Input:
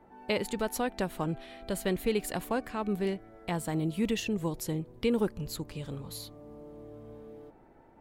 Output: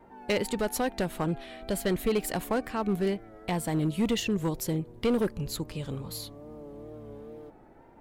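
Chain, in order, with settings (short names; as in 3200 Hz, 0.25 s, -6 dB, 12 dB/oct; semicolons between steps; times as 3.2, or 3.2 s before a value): wow and flutter 55 cents; hard clip -24 dBFS, distortion -15 dB; gain +3.5 dB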